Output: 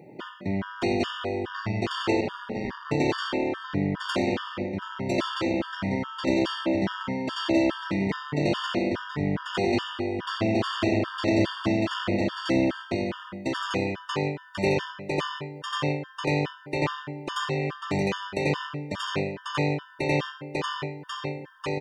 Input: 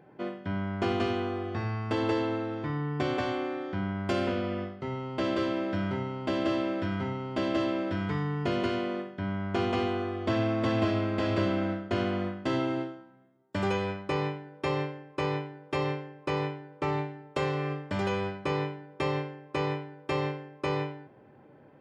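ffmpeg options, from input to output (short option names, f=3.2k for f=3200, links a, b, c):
-filter_complex "[0:a]bandreject=f=760:w=12,aecho=1:1:1003:0.668,aeval=exprs='0.237*(cos(1*acos(clip(val(0)/0.237,-1,1)))-cos(1*PI/2))+0.0266*(cos(6*acos(clip(val(0)/0.237,-1,1)))-cos(6*PI/2))':c=same,highshelf=f=2.2k:g=8.5,asplit=3[a][b][c];[a]afade=t=out:st=2.2:d=0.02[d];[b]aeval=exprs='val(0)*sin(2*PI*98*n/s)':c=same,afade=t=in:st=2.2:d=0.02,afade=t=out:st=2.84:d=0.02[e];[c]afade=t=in:st=2.84:d=0.02[f];[d][e][f]amix=inputs=3:normalize=0,highpass=f=180:p=1,lowshelf=f=400:g=6,asplit=2[g][h];[h]acompressor=threshold=-37dB:ratio=6,volume=0.5dB[i];[g][i]amix=inputs=2:normalize=0,afftfilt=real='re*gt(sin(2*PI*2.4*pts/sr)*(1-2*mod(floor(b*sr/1024/920),2)),0)':imag='im*gt(sin(2*PI*2.4*pts/sr)*(1-2*mod(floor(b*sr/1024/920),2)),0)':win_size=1024:overlap=0.75"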